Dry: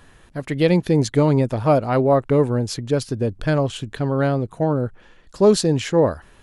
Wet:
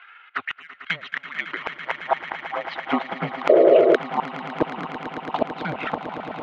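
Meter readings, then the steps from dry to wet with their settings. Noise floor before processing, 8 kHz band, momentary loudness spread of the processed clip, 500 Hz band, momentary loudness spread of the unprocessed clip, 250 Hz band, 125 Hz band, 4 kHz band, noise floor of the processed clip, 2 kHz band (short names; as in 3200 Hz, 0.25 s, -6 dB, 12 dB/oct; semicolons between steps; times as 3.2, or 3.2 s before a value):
-51 dBFS, under -20 dB, 15 LU, -2.0 dB, 8 LU, -8.5 dB, -20.0 dB, -4.5 dB, -49 dBFS, +5.0 dB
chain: HPF 63 Hz 24 dB/oct; transient shaper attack +11 dB, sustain -10 dB; mistuned SSB -320 Hz 370–3400 Hz; high-pass sweep 1700 Hz -> 140 Hz, 1.97–3.29; in parallel at -9 dB: soft clip -14.5 dBFS, distortion -6 dB; on the sum: high-pass sweep 93 Hz -> 810 Hz, 0.67–2.16; flipped gate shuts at -12 dBFS, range -34 dB; envelope flanger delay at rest 2.9 ms, full sweep at -27.5 dBFS; on a send: swelling echo 0.111 s, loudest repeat 8, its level -14 dB; on the sum: painted sound noise, 3.49–3.96, 330–690 Hz -21 dBFS; gain +7.5 dB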